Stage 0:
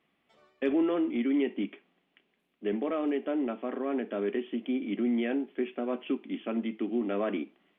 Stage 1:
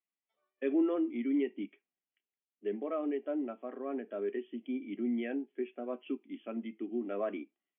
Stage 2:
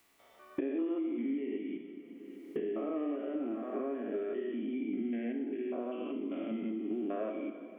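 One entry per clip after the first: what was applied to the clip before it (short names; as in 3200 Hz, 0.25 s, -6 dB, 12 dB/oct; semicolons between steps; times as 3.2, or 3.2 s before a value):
low shelf 450 Hz -10 dB; spectral expander 1.5:1
stepped spectrum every 0.2 s; two-slope reverb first 0.94 s, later 2.4 s, DRR 4.5 dB; three-band squash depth 100%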